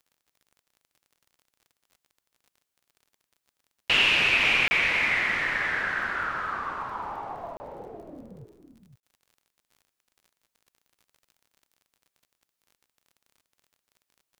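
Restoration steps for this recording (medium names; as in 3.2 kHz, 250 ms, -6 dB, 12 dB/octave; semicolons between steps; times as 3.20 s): de-click; interpolate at 4.68/7.57/9.00 s, 30 ms; inverse comb 510 ms -9 dB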